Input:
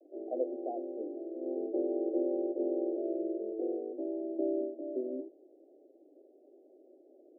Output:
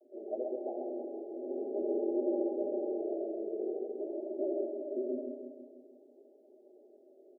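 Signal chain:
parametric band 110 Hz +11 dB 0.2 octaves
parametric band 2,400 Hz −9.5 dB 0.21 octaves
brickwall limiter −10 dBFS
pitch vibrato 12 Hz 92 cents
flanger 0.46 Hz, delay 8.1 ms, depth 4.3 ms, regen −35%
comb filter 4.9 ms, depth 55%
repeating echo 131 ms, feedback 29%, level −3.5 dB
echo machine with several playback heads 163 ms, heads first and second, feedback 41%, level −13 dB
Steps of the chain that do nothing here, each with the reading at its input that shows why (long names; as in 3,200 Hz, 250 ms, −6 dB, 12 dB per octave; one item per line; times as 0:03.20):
parametric band 110 Hz: nothing at its input below 210 Hz
parametric band 2,400 Hz: nothing at its input above 810 Hz
brickwall limiter −10 dBFS: peak of its input −21.0 dBFS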